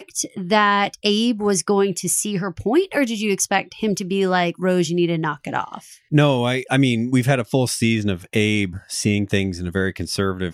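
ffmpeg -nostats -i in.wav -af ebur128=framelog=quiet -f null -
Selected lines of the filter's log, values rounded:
Integrated loudness:
  I:         -20.1 LUFS
  Threshold: -30.2 LUFS
Loudness range:
  LRA:         1.6 LU
  Threshold: -40.1 LUFS
  LRA low:   -21.0 LUFS
  LRA high:  -19.4 LUFS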